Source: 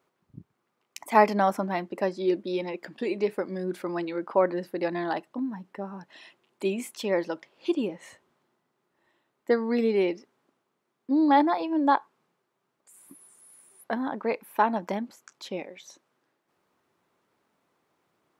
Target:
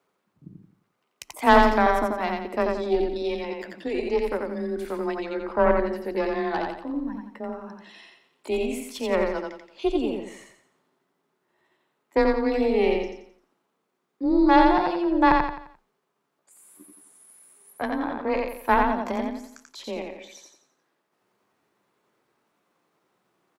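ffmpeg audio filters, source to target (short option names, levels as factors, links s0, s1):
-filter_complex "[0:a]atempo=0.78,aeval=exprs='0.596*(cos(1*acos(clip(val(0)/0.596,-1,1)))-cos(1*PI/2))+0.133*(cos(4*acos(clip(val(0)/0.596,-1,1)))-cos(4*PI/2))':c=same,afreqshift=20,asplit=2[s0][s1];[s1]aecho=0:1:87|174|261|348|435:0.708|0.276|0.108|0.042|0.0164[s2];[s0][s2]amix=inputs=2:normalize=0"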